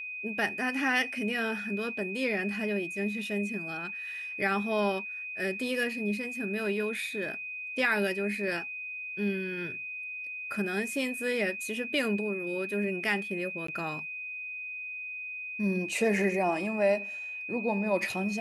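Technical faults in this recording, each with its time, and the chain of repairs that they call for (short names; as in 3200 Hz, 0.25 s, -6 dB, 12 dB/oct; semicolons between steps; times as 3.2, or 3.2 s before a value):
tone 2500 Hz -36 dBFS
13.67–13.68 gap 14 ms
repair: notch 2500 Hz, Q 30; interpolate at 13.67, 14 ms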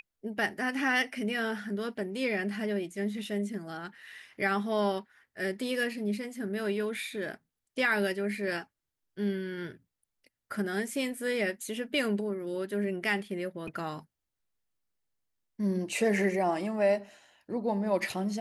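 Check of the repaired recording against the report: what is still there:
none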